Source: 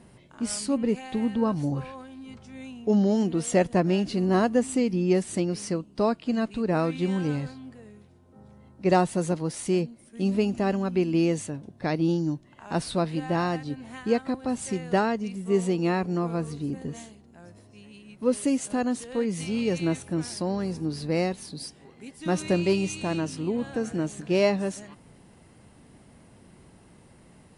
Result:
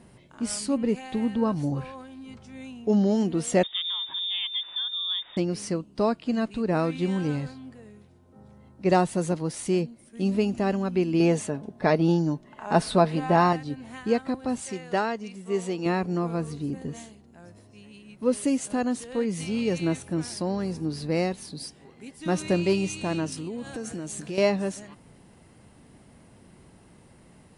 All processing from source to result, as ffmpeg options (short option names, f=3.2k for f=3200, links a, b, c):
-filter_complex "[0:a]asettb=1/sr,asplit=3[a][b][c];[a]atrim=end=3.634[d];[b]atrim=start=3.63:end=5.37,asetpts=PTS-STARTPTS,afade=t=in:d=0.004:c=qsin,afade=t=out:st=1.736:d=0.004:c=qsin,acompressor=threshold=-32dB:ratio=2:attack=3.2:release=140:knee=1:detection=peak,lowpass=f=3.2k:t=q:w=0.5098,lowpass=f=3.2k:t=q:w=0.6013,lowpass=f=3.2k:t=q:w=0.9,lowpass=f=3.2k:t=q:w=2.563,afreqshift=-3800[e];[c]atrim=start=5.366[f];[d][e]acrossfade=d=0.004:c1=hsin:c2=qsin[g];[g][f]acrossfade=d=0.004:c1=qsin:c2=hsin,asettb=1/sr,asplit=3[h][i][j];[h]atrim=end=11.204[k];[i]atrim=start=11.2:end=13.53,asetpts=PTS-STARTPTS,afade=t=in:d=0.004:c=qsin,afade=t=out:st=2.326:d=0.004:c=qsin,equalizer=f=720:w=0.4:g=7.5,aecho=1:1:4.7:0.42,atrim=end_sample=102753[l];[j]atrim=start=13.526[m];[k][l]acrossfade=d=0.004:c1=hsin:c2=qsin[n];[n][m]acrossfade=d=0.004:c1=qsin:c2=hsin,asettb=1/sr,asplit=3[o][p][q];[o]atrim=end=14.604[r];[p]atrim=start=14.6:end=15.86,asetpts=PTS-STARTPTS,afade=t=in:d=0.004:c=qsin,afade=t=out:st=1.256:d=0.004:c=qsin,lowpass=9.5k,lowshelf=f=260:g=-11[s];[q]atrim=start=15.856[t];[r][s]acrossfade=d=0.004:c1=hsin:c2=qsin[u];[u][t]acrossfade=d=0.004:c1=qsin:c2=hsin,asettb=1/sr,asplit=3[v][w][x];[v]atrim=end=23.324[y];[w]atrim=start=23.32:end=24.38,asetpts=PTS-STARTPTS,afade=t=in:d=0.004:c=qsin,afade=t=out:st=1.056:d=0.004:c=qsin,highshelf=f=4.8k:g=11.5,acompressor=threshold=-31dB:ratio=4:attack=3.2:release=140:knee=1:detection=peak[z];[x]atrim=start=24.376[aa];[y][z]acrossfade=d=0.004:c1=hsin:c2=qsin[ab];[ab][aa]acrossfade=d=0.004:c1=qsin:c2=hsin"